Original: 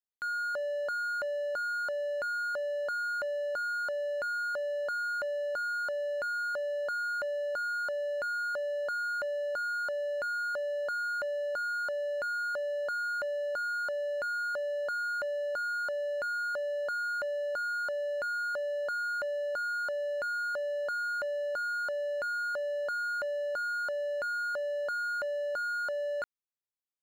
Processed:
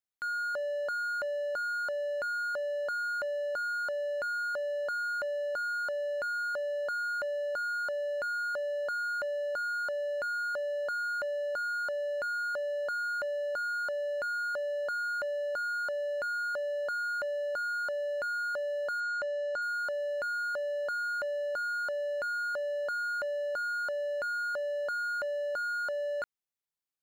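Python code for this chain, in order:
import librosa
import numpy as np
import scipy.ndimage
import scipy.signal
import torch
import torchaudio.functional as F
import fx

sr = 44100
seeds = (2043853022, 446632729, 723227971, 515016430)

y = fx.lowpass(x, sr, hz=8300.0, slope=24, at=(19.0, 19.62))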